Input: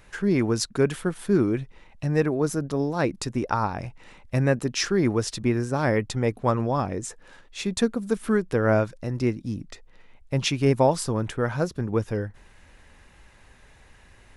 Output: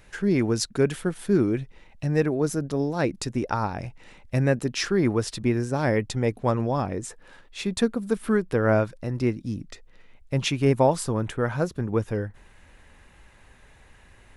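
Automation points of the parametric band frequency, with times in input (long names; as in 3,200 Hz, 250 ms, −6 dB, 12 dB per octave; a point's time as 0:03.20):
parametric band −4 dB 0.62 octaves
1,100 Hz
from 0:04.71 6,200 Hz
from 0:05.42 1,200 Hz
from 0:06.82 6,400 Hz
from 0:09.35 890 Hz
from 0:10.36 5,200 Hz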